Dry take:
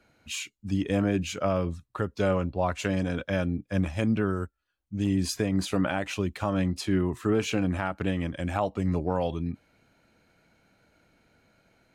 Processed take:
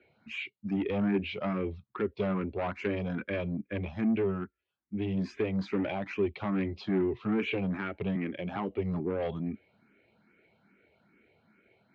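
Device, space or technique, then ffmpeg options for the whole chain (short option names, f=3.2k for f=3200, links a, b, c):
barber-pole phaser into a guitar amplifier: -filter_complex "[0:a]asettb=1/sr,asplit=3[a][b][c];[a]atrim=end=8.154[d];[b]atrim=start=8.15:end=8.56,asetpts=PTS-STARTPTS,afade=t=in:d=0.004:c=qsin,afade=t=out:st=0.406:d=0.004:c=qsin,highpass=f=120:w=0.5412,highpass=f=120:w=1.3066[e];[c]atrim=start=8.556[f];[d][e]acrossfade=d=0.004:c1=hsin:c2=qsin[g];[g][f]acrossfade=d=0.004:c1=qsin:c2=hsin,asplit=2[h][i];[i]afreqshift=2.4[j];[h][j]amix=inputs=2:normalize=1,asoftclip=type=tanh:threshold=-26.5dB,highpass=87,equalizer=f=210:t=q:w=4:g=7,equalizer=f=390:t=q:w=4:g=10,equalizer=f=2.2k:t=q:w=4:g=7,lowpass=f=3.6k:w=0.5412,lowpass=f=3.6k:w=1.3066,volume=-1.5dB"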